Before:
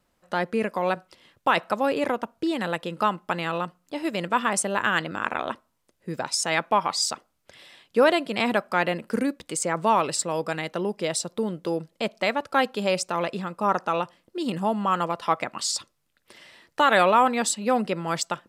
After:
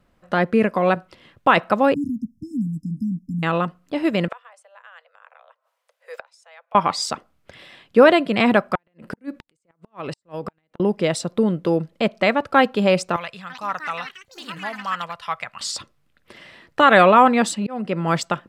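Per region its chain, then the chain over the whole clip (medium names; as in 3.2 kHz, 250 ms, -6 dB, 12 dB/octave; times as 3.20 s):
1.94–3.43 s: brick-wall FIR band-stop 300–5000 Hz + peaking EQ 7.1 kHz -6.5 dB 2.7 oct
4.28–6.75 s: steep high-pass 480 Hz 96 dB/octave + inverted gate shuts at -26 dBFS, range -28 dB
8.75–10.80 s: compression, threshold -31 dBFS + inverted gate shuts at -24 dBFS, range -41 dB
13.16–15.61 s: amplifier tone stack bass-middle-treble 10-0-10 + ever faster or slower copies 338 ms, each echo +7 st, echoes 2, each echo -6 dB
17.52–18.10 s: band-stop 3.8 kHz, Q 20 + slow attack 420 ms
whole clip: tone controls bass +5 dB, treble -10 dB; band-stop 900 Hz, Q 16; trim +6.5 dB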